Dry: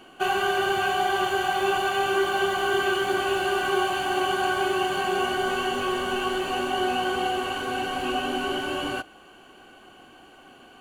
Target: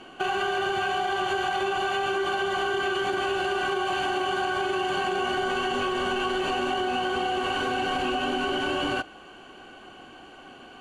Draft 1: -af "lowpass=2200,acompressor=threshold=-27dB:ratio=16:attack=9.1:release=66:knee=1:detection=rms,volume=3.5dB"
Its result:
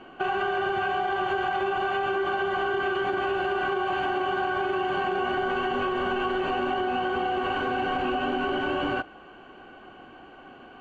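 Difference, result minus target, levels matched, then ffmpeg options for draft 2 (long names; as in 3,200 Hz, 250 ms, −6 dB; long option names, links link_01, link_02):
8,000 Hz band −17.5 dB
-af "lowpass=7100,acompressor=threshold=-27dB:ratio=16:attack=9.1:release=66:knee=1:detection=rms,volume=3.5dB"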